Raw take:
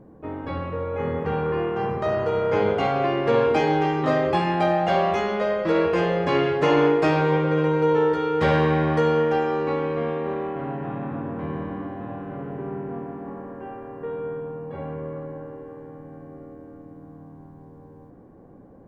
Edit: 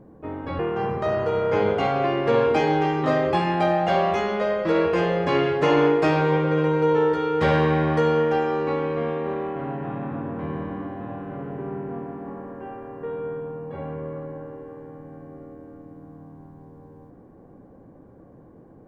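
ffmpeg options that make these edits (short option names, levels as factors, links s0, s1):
-filter_complex "[0:a]asplit=2[s0][s1];[s0]atrim=end=0.592[s2];[s1]atrim=start=1.588[s3];[s2][s3]acrossfade=d=0.004:c1=hsin:c2=hsin"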